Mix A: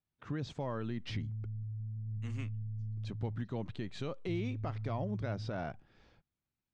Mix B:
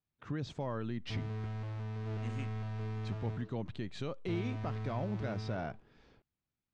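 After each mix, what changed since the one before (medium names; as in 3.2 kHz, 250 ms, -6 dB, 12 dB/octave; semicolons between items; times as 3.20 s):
background: remove inverse Chebyshev low-pass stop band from 730 Hz, stop band 70 dB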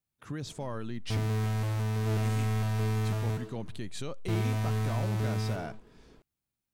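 background +9.5 dB; master: remove distance through air 170 m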